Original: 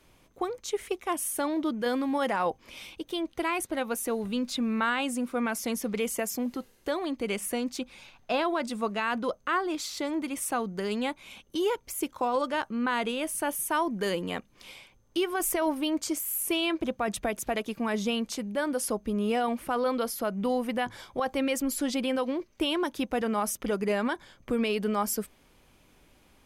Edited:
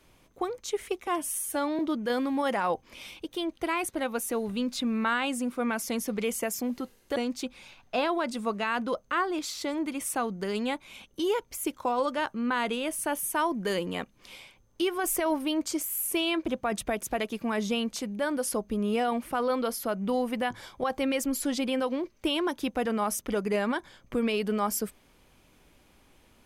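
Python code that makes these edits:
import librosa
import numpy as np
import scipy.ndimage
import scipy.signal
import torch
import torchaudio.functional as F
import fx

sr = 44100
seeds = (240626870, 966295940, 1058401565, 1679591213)

y = fx.edit(x, sr, fx.stretch_span(start_s=1.07, length_s=0.48, factor=1.5),
    fx.cut(start_s=6.92, length_s=0.6), tone=tone)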